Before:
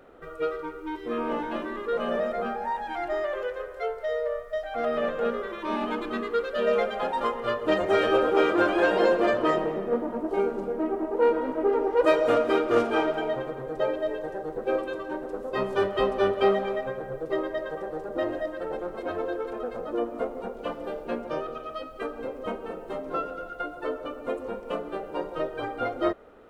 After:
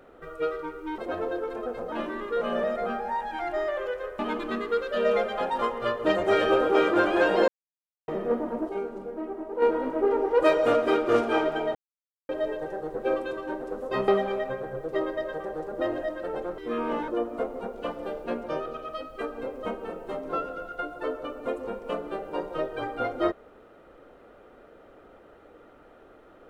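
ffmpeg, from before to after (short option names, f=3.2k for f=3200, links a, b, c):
-filter_complex "[0:a]asplit=13[a][b][c][d][e][f][g][h][i][j][k][l][m];[a]atrim=end=0.982[n];[b]atrim=start=18.948:end=19.892[o];[c]atrim=start=1.478:end=3.752[p];[d]atrim=start=5.808:end=9.1,asetpts=PTS-STARTPTS,afade=t=out:st=3.288:d=0.004:c=hsin[q];[e]atrim=start=9.1:end=9.7,asetpts=PTS-STARTPTS,volume=0[r];[f]atrim=start=9.7:end=10.312,asetpts=PTS-STARTPTS,afade=t=in:d=0.004:c=hsin[s];[g]atrim=start=10.308:end=11.242,asetpts=PTS-STARTPTS,volume=-6.5dB[t];[h]atrim=start=11.238:end=13.37,asetpts=PTS-STARTPTS,afade=t=out:st=2.128:d=0.004:c=hsin[u];[i]atrim=start=13.37:end=13.91,asetpts=PTS-STARTPTS,volume=0[v];[j]atrim=start=13.91:end=15.702,asetpts=PTS-STARTPTS,afade=t=in:d=0.004:c=hsin[w];[k]atrim=start=16.448:end=18.952[x];[l]atrim=start=0.978:end=1.482[y];[m]atrim=start=19.888[z];[n][o]acrossfade=d=0.004:c1=hsin:c2=hsin[aa];[aa][p]acrossfade=d=0.004:c1=hsin:c2=hsin[ab];[q][r][s]concat=n=3:v=0:a=1[ac];[ab][ac]acrossfade=d=0.004:c1=hsin:c2=hsin[ad];[ad][t]acrossfade=d=0.004:c1=hsin:c2=hsin[ae];[u][v][w]concat=n=3:v=0:a=1[af];[ae][af]acrossfade=d=0.004:c1=hsin:c2=hsin[ag];[ag][x]acrossfade=d=0.004:c1=hsin:c2=hsin[ah];[ah][y]acrossfade=d=0.004:c1=hsin:c2=hsin[ai];[ai][z]acrossfade=d=0.004:c1=hsin:c2=hsin"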